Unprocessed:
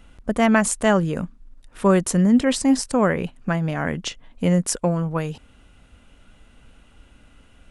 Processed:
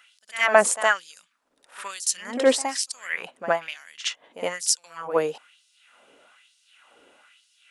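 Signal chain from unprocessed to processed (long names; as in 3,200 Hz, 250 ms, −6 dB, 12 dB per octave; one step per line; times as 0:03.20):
auto-filter high-pass sine 1.1 Hz 410–5,000 Hz
echo ahead of the sound 66 ms −13 dB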